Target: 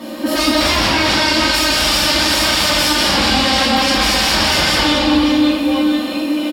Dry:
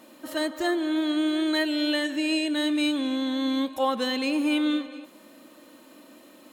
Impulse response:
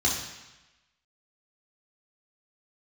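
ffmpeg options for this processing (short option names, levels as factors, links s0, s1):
-filter_complex "[0:a]aecho=1:1:170|408|741.2|1208|1861:0.631|0.398|0.251|0.158|0.1,aeval=exprs='0.316*sin(PI/2*10*val(0)/0.316)':c=same[s0];[1:a]atrim=start_sample=2205,asetrate=33516,aresample=44100[s1];[s0][s1]afir=irnorm=-1:irlink=0,volume=0.158"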